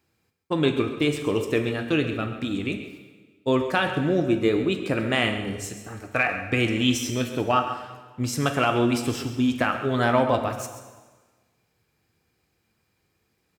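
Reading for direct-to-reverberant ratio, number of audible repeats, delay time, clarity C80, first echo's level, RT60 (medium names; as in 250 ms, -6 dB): 6.0 dB, 1, 134 ms, 8.5 dB, -12.5 dB, 1.4 s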